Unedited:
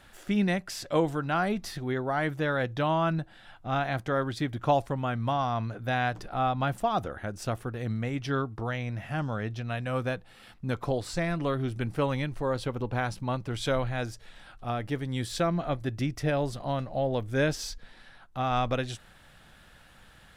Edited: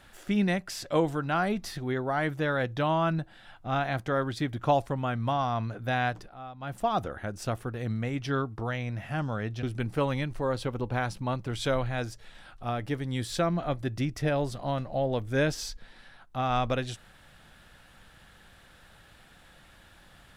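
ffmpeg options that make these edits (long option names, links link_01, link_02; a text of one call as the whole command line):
ffmpeg -i in.wav -filter_complex "[0:a]asplit=4[link_01][link_02][link_03][link_04];[link_01]atrim=end=6.35,asetpts=PTS-STARTPTS,afade=type=out:start_time=6.09:duration=0.26:silence=0.16788[link_05];[link_02]atrim=start=6.35:end=6.6,asetpts=PTS-STARTPTS,volume=-15.5dB[link_06];[link_03]atrim=start=6.6:end=9.632,asetpts=PTS-STARTPTS,afade=type=in:duration=0.26:silence=0.16788[link_07];[link_04]atrim=start=11.638[link_08];[link_05][link_06][link_07]concat=n=3:v=0:a=1[link_09];[link_09][link_08]acrossfade=duration=0.004:curve1=hsin:curve2=hsin" out.wav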